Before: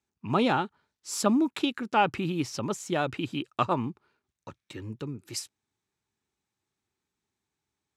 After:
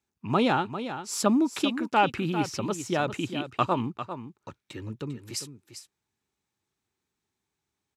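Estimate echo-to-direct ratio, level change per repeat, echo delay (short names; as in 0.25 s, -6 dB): -10.5 dB, no steady repeat, 0.398 s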